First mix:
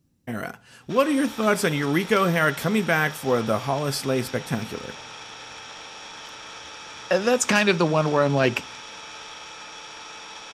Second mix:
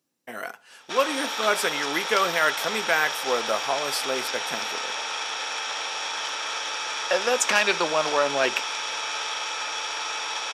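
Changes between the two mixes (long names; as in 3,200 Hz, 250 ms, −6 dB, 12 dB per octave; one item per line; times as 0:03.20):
background +10.0 dB
master: add high-pass filter 520 Hz 12 dB per octave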